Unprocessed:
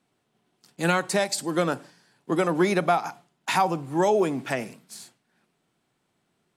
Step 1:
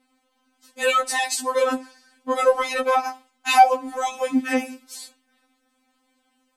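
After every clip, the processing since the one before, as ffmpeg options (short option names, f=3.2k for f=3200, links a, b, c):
-af "afftfilt=real='re*3.46*eq(mod(b,12),0)':imag='im*3.46*eq(mod(b,12),0)':win_size=2048:overlap=0.75,volume=7.5dB"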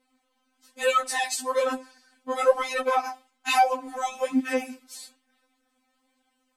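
-af "flanger=delay=2:depth=7.4:regen=43:speed=1.1:shape=sinusoidal"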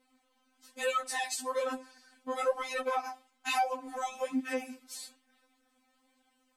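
-af "acompressor=threshold=-43dB:ratio=1.5"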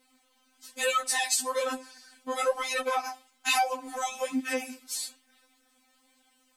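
-af "highshelf=f=2.4k:g=9,volume=2dB"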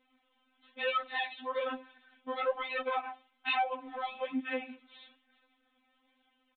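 -af "aresample=8000,aresample=44100,volume=-4.5dB"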